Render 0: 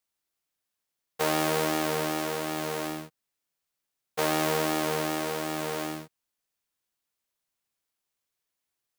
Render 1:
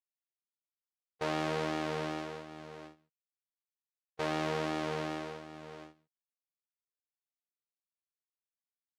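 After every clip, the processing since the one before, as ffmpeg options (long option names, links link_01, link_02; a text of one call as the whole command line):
ffmpeg -i in.wav -af "agate=range=-27dB:threshold=-29dB:ratio=16:detection=peak,lowpass=4400,equalizer=frequency=89:width_type=o:width=1.6:gain=5.5,volume=-7dB" out.wav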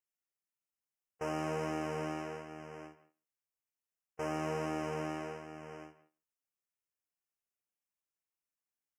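ffmpeg -i in.wav -filter_complex "[0:a]asoftclip=type=tanh:threshold=-27dB,asuperstop=centerf=3900:order=20:qfactor=2.1,asplit=2[link_01][link_02];[link_02]adelay=170,highpass=300,lowpass=3400,asoftclip=type=hard:threshold=-35.5dB,volume=-16dB[link_03];[link_01][link_03]amix=inputs=2:normalize=0" out.wav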